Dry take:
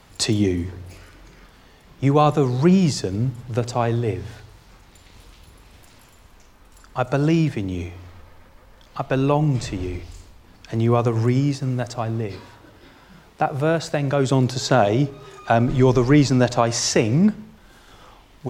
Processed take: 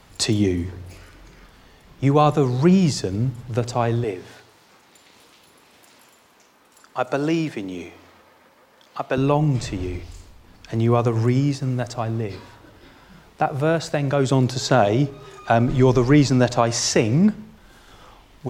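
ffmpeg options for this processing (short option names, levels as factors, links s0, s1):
-filter_complex "[0:a]asettb=1/sr,asplit=3[s0][s1][s2];[s0]atrim=end=4.044[s3];[s1]atrim=start=4.04:end=9.18,asetpts=PTS-STARTPTS,afade=t=in:d=0.004:c=qsin,afade=t=out:st=5.136:d=0.004:c=qsin,highpass=250[s4];[s2]atrim=start=9.176[s5];[s3][s4]acrossfade=d=0.004:c1=hsin:c2=qsin[s6];[s6][s5]acrossfade=d=0.004:c1=qsin:c2=hsin"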